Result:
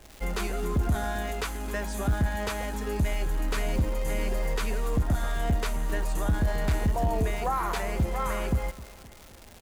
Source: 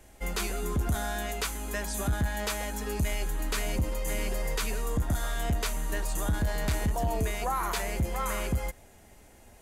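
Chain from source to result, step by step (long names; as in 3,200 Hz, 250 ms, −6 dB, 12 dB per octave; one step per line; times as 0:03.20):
high-shelf EQ 2,900 Hz −9.5 dB
surface crackle 360 per second −39 dBFS
repeating echo 261 ms, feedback 52%, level −18.5 dB
level +3 dB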